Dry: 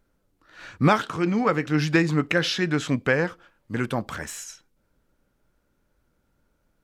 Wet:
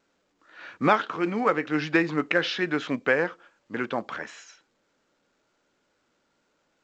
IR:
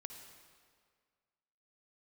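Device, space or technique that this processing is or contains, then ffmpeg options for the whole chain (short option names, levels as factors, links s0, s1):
telephone: -af "highpass=290,lowpass=3100,highshelf=f=4400:g=2.5" -ar 16000 -c:a pcm_alaw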